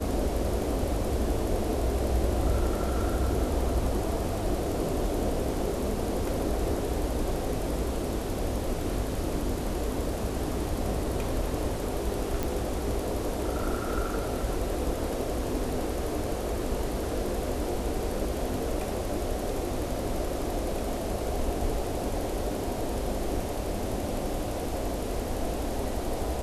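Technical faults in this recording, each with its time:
12.43 s: pop

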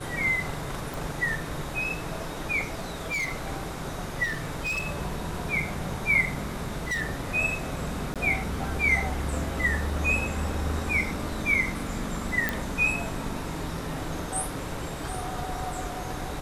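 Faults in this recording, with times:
0.94 s: pop
2.79–3.34 s: clipped -26 dBFS
4.23–4.88 s: clipped -26 dBFS
6.44–7.02 s: clipped -25.5 dBFS
8.14–8.16 s: dropout 17 ms
12.49 s: pop -10 dBFS

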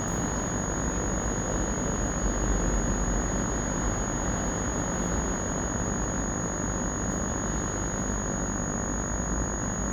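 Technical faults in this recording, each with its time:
buzz 50 Hz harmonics 38 -35 dBFS
whine 6.7 kHz -34 dBFS

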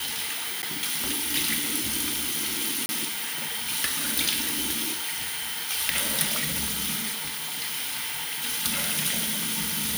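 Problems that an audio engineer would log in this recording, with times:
0.62–0.63 s: dropout 9.4 ms
2.86–2.89 s: dropout 31 ms

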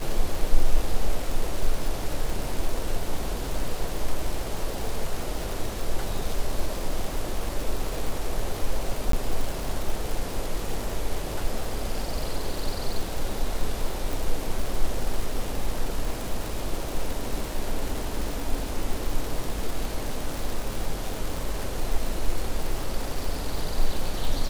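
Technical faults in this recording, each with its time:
crackle 180 per s -28 dBFS
9.12–9.13 s: dropout

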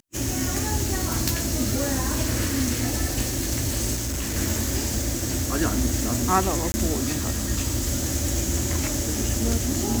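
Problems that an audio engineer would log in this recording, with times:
3.95–4.37 s: clipped -24.5 dBFS
6.72–6.74 s: dropout 20 ms

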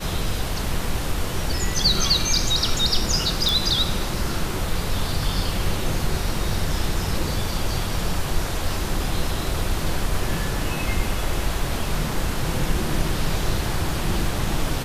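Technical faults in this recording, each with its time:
3.49 s: pop

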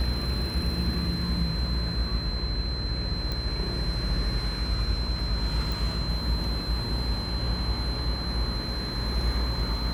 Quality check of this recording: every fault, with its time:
buzz 60 Hz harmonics 12 -32 dBFS
whine 4.1 kHz -34 dBFS
3.32 s: pop -18 dBFS
5.72 s: pop

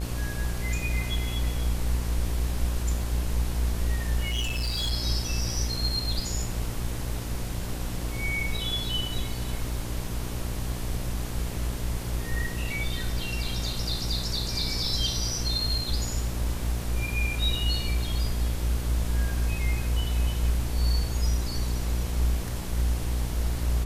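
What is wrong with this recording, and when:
buzz 60 Hz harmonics 19 -31 dBFS
4.30–4.92 s: clipped -24.5 dBFS

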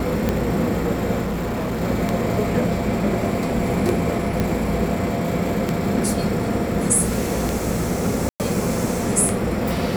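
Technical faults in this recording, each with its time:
tick 33 1/3 rpm -7 dBFS
1.22–1.82 s: clipped -21 dBFS
4.40 s: pop -8 dBFS
8.29–8.40 s: dropout 108 ms

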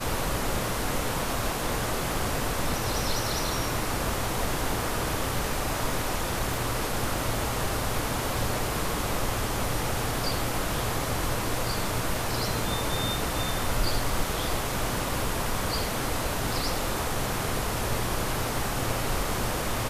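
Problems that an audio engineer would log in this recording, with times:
6.54 s: pop

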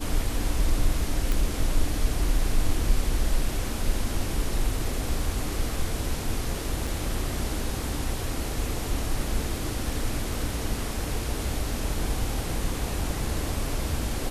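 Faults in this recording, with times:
1.32 s: pop
6.87 s: dropout 4.5 ms

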